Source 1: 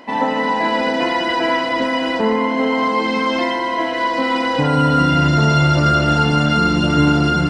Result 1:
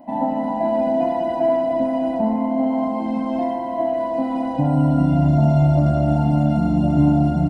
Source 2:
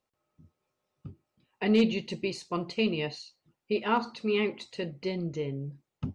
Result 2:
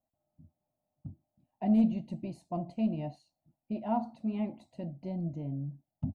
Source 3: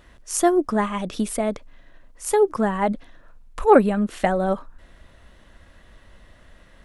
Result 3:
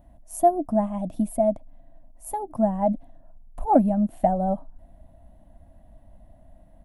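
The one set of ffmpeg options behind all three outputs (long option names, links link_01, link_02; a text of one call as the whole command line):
ffmpeg -i in.wav -af "firequalizer=gain_entry='entry(290,0);entry(430,-22);entry(650,6);entry(1200,-21);entry(5300,-24);entry(11000,-5)':delay=0.05:min_phase=1" out.wav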